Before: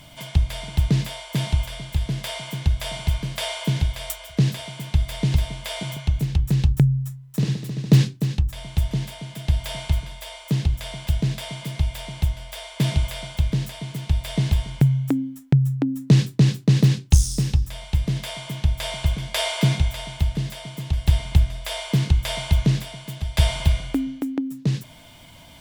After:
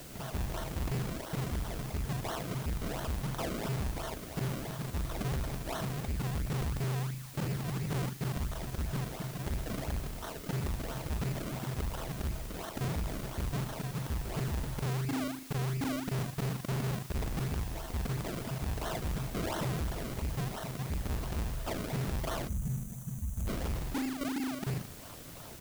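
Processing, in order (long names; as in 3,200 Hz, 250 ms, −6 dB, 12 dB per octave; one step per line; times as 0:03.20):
reversed piece by piece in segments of 38 ms
downsampling to 16,000 Hz
sample-and-hold swept by an LFO 35×, swing 100% 2.9 Hz
soft clipping −29.5 dBFS, distortion −2 dB
background noise white −50 dBFS
gain on a spectral selection 0:22.48–0:23.47, 240–5,800 Hz −16 dB
level −1.5 dB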